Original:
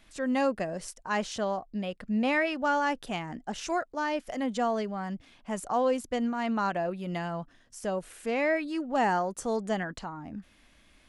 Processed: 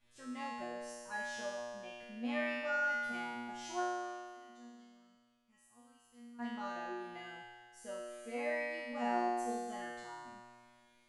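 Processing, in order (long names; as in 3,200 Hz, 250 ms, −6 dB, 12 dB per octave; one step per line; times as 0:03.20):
0:03.83–0:06.39: guitar amp tone stack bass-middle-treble 6-0-2
tuned comb filter 120 Hz, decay 1.8 s, mix 100%
level +9 dB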